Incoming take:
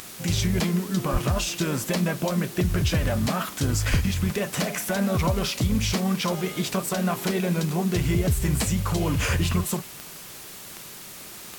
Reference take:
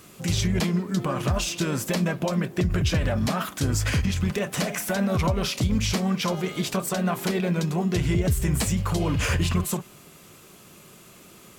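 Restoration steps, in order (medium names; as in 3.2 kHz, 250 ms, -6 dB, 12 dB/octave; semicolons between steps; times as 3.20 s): de-click; 1.12–1.24 s: high-pass 140 Hz 24 dB/octave; 3.90–4.02 s: high-pass 140 Hz 24 dB/octave; noise reduction 8 dB, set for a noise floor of -41 dBFS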